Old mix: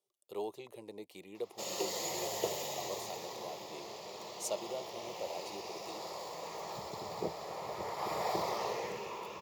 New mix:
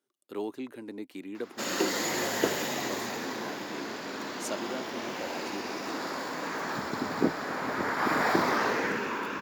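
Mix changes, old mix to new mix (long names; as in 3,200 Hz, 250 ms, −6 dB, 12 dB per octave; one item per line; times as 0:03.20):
background +4.5 dB
master: remove phaser with its sweep stopped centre 640 Hz, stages 4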